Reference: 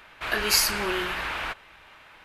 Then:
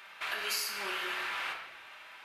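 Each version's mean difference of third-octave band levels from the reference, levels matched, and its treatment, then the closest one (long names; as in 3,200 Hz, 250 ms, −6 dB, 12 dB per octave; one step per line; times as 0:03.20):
6.5 dB: high-pass filter 1,200 Hz 6 dB per octave
downward compressor 4 to 1, threshold −36 dBFS, peak gain reduction 16 dB
rectangular room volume 530 cubic metres, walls mixed, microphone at 1.2 metres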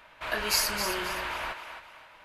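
3.0 dB: notch filter 390 Hz, Q 12
hollow resonant body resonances 610/950 Hz, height 7 dB, ringing for 25 ms
on a send: feedback echo with a high-pass in the loop 265 ms, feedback 34%, high-pass 370 Hz, level −8 dB
on the sum: level −5 dB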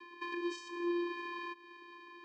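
14.0 dB: downward compressor 10 to 1, threshold −37 dBFS, peak gain reduction 20.5 dB
channel vocoder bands 8, square 347 Hz
band-pass filter 140–6,100 Hz
level +3 dB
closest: second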